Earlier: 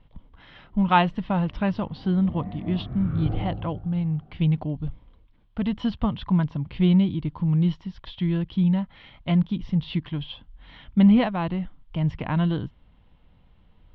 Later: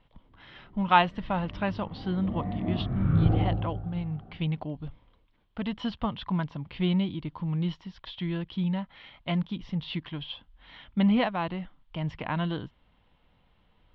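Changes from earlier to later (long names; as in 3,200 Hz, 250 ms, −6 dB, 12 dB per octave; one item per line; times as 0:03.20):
speech: add low-shelf EQ 300 Hz −10.5 dB
background +4.5 dB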